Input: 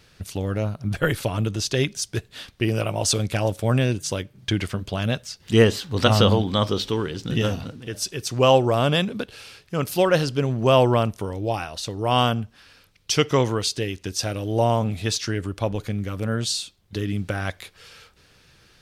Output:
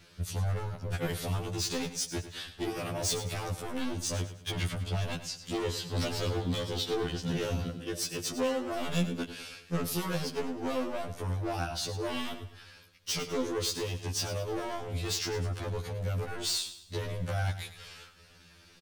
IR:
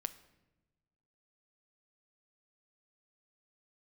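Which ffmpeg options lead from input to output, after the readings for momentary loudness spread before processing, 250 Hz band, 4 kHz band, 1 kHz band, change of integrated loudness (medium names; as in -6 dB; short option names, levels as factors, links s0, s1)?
12 LU, -10.5 dB, -8.5 dB, -13.0 dB, -10.5 dB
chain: -filter_complex "[0:a]alimiter=limit=0.282:level=0:latency=1:release=327,acrossover=split=430|3000[s0][s1][s2];[s1]acompressor=threshold=0.0282:ratio=3[s3];[s0][s3][s2]amix=inputs=3:normalize=0,volume=18.8,asoftclip=hard,volume=0.0531,aecho=1:1:104|208|312|416:0.237|0.0901|0.0342|0.013,afftfilt=real='re*2*eq(mod(b,4),0)':imag='im*2*eq(mod(b,4),0)':win_size=2048:overlap=0.75"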